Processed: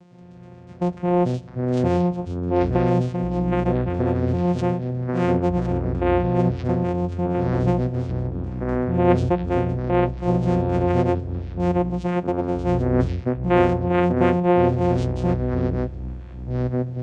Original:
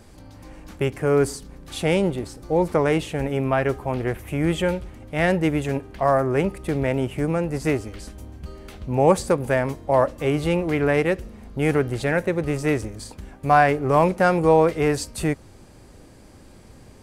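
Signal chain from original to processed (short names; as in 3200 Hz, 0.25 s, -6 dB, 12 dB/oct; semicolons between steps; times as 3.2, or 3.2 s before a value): vocoder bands 4, saw 177 Hz; echoes that change speed 0.104 s, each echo -6 st, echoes 3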